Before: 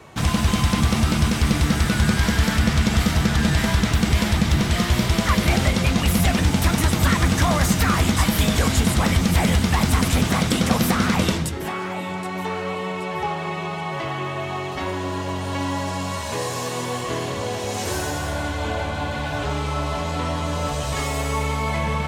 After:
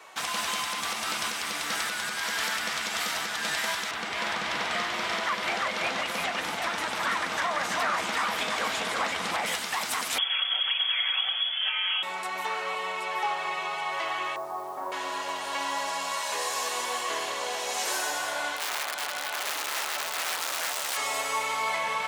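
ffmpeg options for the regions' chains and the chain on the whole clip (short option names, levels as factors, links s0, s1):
-filter_complex "[0:a]asettb=1/sr,asplit=3[s0][s1][s2];[s0]atrim=end=3.914[s3];[s1]atrim=start=3.91:end=9.46,asetpts=PTS-STARTPTS,afade=t=in:d=0.004:c=qsin,afade=t=out:st=5.546:d=0.004:c=qsin,aemphasis=mode=reproduction:type=75fm,aecho=1:1:333:0.668,atrim=end_sample=244755[s4];[s2]atrim=start=9.456[s5];[s3][s4]acrossfade=d=0.004:c1=hsin:c2=qsin[s6];[s6][s5]acrossfade=d=0.004:c1=qsin:c2=hsin,asettb=1/sr,asplit=3[s7][s8][s9];[s7]atrim=end=10.184[s10];[s8]atrim=start=10.18:end=12.03,asetpts=PTS-STARTPTS,afade=t=in:d=0.004:c=qsin,afade=t=out:st=1.846:d=0.004:c=qsin,aecho=1:1:5.1:0.47,atrim=end_sample=81585,lowpass=f=3000:t=q:w=0.5098,lowpass=f=3000:t=q:w=0.6013,lowpass=f=3000:t=q:w=0.9,lowpass=f=3000:t=q:w=2.563,afreqshift=-3500[s11];[s9]atrim=start=12.026[s12];[s10][s11]acrossfade=d=0.004:c1=hsin:c2=qsin[s13];[s13][s12]acrossfade=d=0.004:c1=qsin:c2=hsin,asettb=1/sr,asplit=3[s14][s15][s16];[s14]atrim=end=14.364[s17];[s15]atrim=start=14.36:end=14.92,asetpts=PTS-STARTPTS,afade=t=in:d=0.004:c=qsin,afade=t=out:st=0.556:d=0.004:c=qsin,lowpass=f=1100:w=0.5412,lowpass=f=1100:w=1.3066,acrusher=bits=7:mix=0:aa=0.5[s18];[s16]atrim=start=14.916[s19];[s17][s18]acrossfade=d=0.004:c1=hsin:c2=qsin[s20];[s20][s19]acrossfade=d=0.004:c1=qsin:c2=hsin,asettb=1/sr,asplit=3[s21][s22][s23];[s21]atrim=end=18.564[s24];[s22]atrim=start=18.56:end=20.97,asetpts=PTS-STARTPTS,afade=t=in:d=0.004:c=qsin,afade=t=out:st=2.406:d=0.004:c=qsin,highshelf=f=8400:g=3,bandreject=f=50:t=h:w=6,bandreject=f=100:t=h:w=6,bandreject=f=150:t=h:w=6,bandreject=f=200:t=h:w=6,bandreject=f=250:t=h:w=6,bandreject=f=300:t=h:w=6,aeval=exprs='(mod(9.44*val(0)+1,2)-1)/9.44':c=same[s25];[s23]atrim=start=20.966[s26];[s24][s25]acrossfade=d=0.004:c1=hsin:c2=qsin[s27];[s27][s26]acrossfade=d=0.004:c1=qsin:c2=hsin,highpass=790,alimiter=limit=0.126:level=0:latency=1:release=226"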